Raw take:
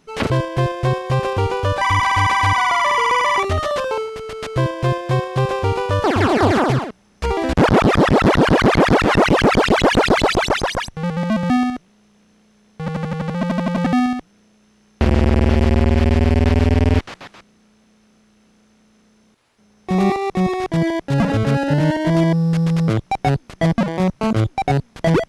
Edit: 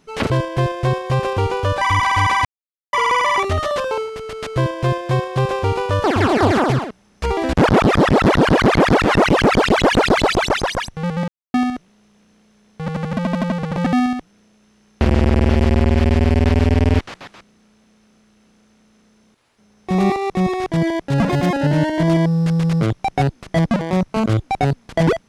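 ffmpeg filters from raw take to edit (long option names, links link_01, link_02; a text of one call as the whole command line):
ffmpeg -i in.wav -filter_complex "[0:a]asplit=9[link_01][link_02][link_03][link_04][link_05][link_06][link_07][link_08][link_09];[link_01]atrim=end=2.45,asetpts=PTS-STARTPTS,afade=type=out:start_time=2.446:duration=0.004:curve=hsin[link_10];[link_02]atrim=start=2.45:end=2.93,asetpts=PTS-STARTPTS,volume=0[link_11];[link_03]atrim=start=2.93:end=11.28,asetpts=PTS-STARTPTS,afade=type=in:duration=0.004:curve=hsin,afade=type=out:start_time=8.346:duration=0.004:curve=hsin[link_12];[link_04]atrim=start=11.28:end=11.54,asetpts=PTS-STARTPTS,volume=0[link_13];[link_05]atrim=start=11.54:end=13.172,asetpts=PTS-STARTPTS,afade=type=in:duration=0.004:curve=hsin[link_14];[link_06]atrim=start=13.168:end=13.762,asetpts=PTS-STARTPTS,areverse[link_15];[link_07]atrim=start=13.758:end=21.294[link_16];[link_08]atrim=start=21.29:end=21.6,asetpts=PTS-STARTPTS,asetrate=56889,aresample=44100[link_17];[link_09]atrim=start=21.596[link_18];[link_10][link_11][link_12][link_13][link_14]concat=n=5:v=0:a=1[link_19];[link_19][link_15]acrossfade=duration=0.004:curve1=hsin:curve2=hsin[link_20];[link_20][link_16]acrossfade=duration=0.004:curve1=hsin:curve2=hsin[link_21];[link_21][link_17]acrossfade=duration=0.004:curve1=hsin:curve2=hsin[link_22];[link_22][link_18]acrossfade=duration=0.004:curve1=hsin:curve2=hsin" out.wav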